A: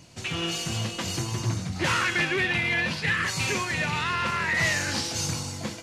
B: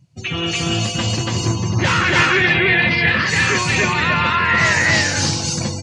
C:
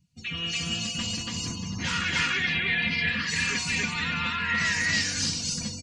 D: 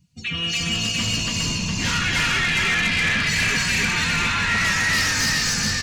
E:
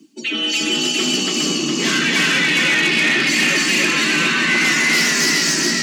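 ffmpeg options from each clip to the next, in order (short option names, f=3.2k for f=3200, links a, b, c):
-af "afftdn=nr=25:nf=-38,aecho=1:1:192.4|285.7:0.251|1,volume=7.5dB"
-af "equalizer=f=630:t=o:w=2.3:g=-14.5,aecho=1:1:4.2:0.76,volume=-8dB"
-filter_complex "[0:a]asplit=8[a][b][c][d][e][f][g][h];[b]adelay=411,afreqshift=-60,volume=-3.5dB[i];[c]adelay=822,afreqshift=-120,volume=-8.9dB[j];[d]adelay=1233,afreqshift=-180,volume=-14.2dB[k];[e]adelay=1644,afreqshift=-240,volume=-19.6dB[l];[f]adelay=2055,afreqshift=-300,volume=-24.9dB[m];[g]adelay=2466,afreqshift=-360,volume=-30.3dB[n];[h]adelay=2877,afreqshift=-420,volume=-35.6dB[o];[a][i][j][k][l][m][n][o]amix=inputs=8:normalize=0,asplit=2[p][q];[q]aeval=exprs='0.266*sin(PI/2*3.16*val(0)/0.266)':c=same,volume=-9dB[r];[p][r]amix=inputs=2:normalize=0,volume=-2dB"
-af "areverse,acompressor=mode=upward:threshold=-24dB:ratio=2.5,areverse,afreqshift=140,volume=4.5dB"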